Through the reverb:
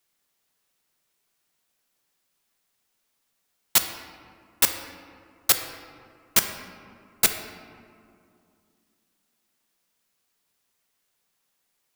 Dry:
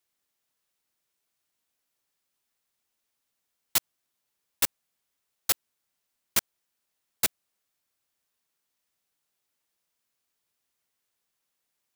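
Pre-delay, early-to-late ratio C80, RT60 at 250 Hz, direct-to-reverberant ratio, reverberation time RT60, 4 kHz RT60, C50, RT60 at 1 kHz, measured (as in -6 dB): 4 ms, 9.0 dB, 3.1 s, 6.0 dB, 2.5 s, 1.1 s, 7.5 dB, 2.4 s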